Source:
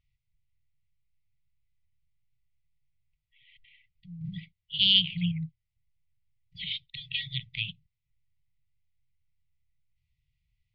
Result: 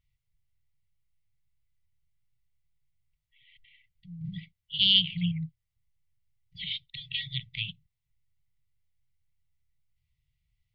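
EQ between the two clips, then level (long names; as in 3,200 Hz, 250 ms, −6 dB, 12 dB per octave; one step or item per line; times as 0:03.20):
notch filter 2,500 Hz, Q 17
0.0 dB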